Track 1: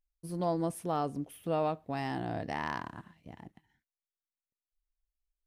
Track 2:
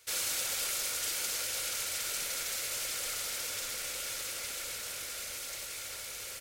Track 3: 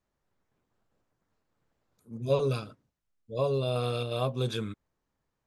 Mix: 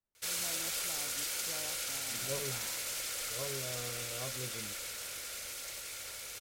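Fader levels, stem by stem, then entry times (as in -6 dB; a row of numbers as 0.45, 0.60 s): -19.5, -2.5, -14.5 dB; 0.00, 0.15, 0.00 s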